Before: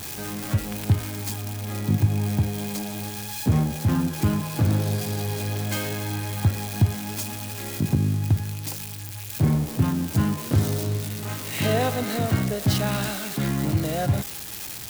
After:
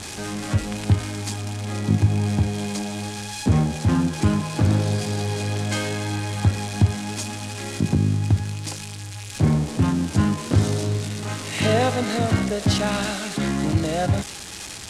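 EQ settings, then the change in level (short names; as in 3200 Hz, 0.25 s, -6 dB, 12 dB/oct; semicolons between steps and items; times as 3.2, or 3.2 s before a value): LPF 9100 Hz 24 dB/oct; bell 130 Hz -11.5 dB 0.2 oct; +3.5 dB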